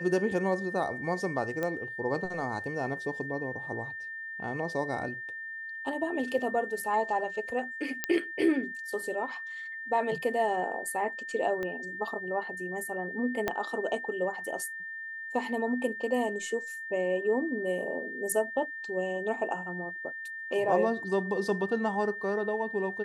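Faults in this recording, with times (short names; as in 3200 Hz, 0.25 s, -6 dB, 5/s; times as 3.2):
tone 1800 Hz -37 dBFS
1.63 pop -19 dBFS
8.04 pop -11 dBFS
11.63 pop -22 dBFS
13.48 pop -14 dBFS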